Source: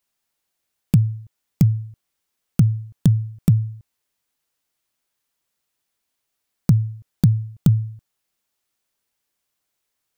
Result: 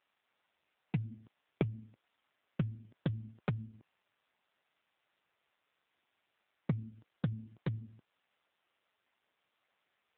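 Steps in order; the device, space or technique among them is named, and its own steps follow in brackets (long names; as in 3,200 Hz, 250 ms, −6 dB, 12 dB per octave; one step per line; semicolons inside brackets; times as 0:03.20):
voicemail (band-pass filter 430–3,000 Hz; downward compressor 8 to 1, threshold −33 dBFS, peak gain reduction 8 dB; level +9.5 dB; AMR narrowband 6.7 kbit/s 8,000 Hz)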